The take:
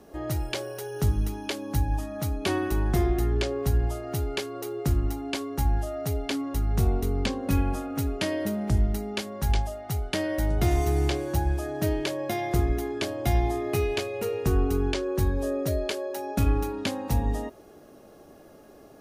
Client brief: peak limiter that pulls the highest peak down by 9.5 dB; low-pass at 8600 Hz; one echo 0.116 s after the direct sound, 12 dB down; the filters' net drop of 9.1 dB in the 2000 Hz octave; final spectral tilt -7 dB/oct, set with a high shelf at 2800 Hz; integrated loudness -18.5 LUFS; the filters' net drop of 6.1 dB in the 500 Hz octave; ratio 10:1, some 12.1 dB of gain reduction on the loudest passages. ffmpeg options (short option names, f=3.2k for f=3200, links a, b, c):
-af "lowpass=8.6k,equalizer=f=500:t=o:g=-8,equalizer=f=2k:t=o:g=-8,highshelf=f=2.8k:g=-7.5,acompressor=threshold=-31dB:ratio=10,alimiter=level_in=6dB:limit=-24dB:level=0:latency=1,volume=-6dB,aecho=1:1:116:0.251,volume=20dB"